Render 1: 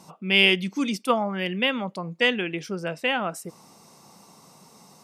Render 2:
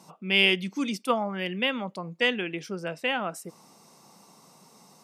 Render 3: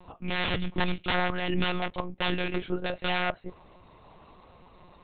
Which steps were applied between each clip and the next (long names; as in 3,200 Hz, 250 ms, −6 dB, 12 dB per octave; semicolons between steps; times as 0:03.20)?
high-pass filter 130 Hz; level −3 dB
wrap-around overflow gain 22.5 dB; flanger 0.61 Hz, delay 4.4 ms, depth 8.6 ms, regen +66%; one-pitch LPC vocoder at 8 kHz 180 Hz; level +8 dB